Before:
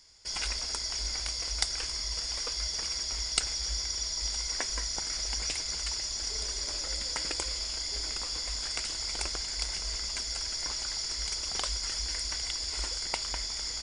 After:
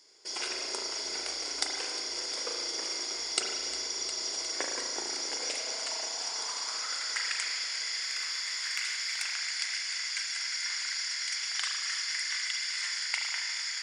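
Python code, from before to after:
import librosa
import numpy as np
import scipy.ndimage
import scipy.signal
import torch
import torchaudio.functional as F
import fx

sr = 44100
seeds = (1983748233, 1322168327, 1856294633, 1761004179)

y = fx.filter_sweep_highpass(x, sr, from_hz=360.0, to_hz=1800.0, start_s=5.14, end_s=7.24, q=3.1)
y = fx.echo_heads(y, sr, ms=356, heads='first and second', feedback_pct=66, wet_db=-15)
y = fx.rev_spring(y, sr, rt60_s=1.4, pass_ms=(36,), chirp_ms=70, drr_db=0.5)
y = fx.transformer_sat(y, sr, knee_hz=3900.0, at=(8.02, 9.35))
y = y * 10.0 ** (-2.0 / 20.0)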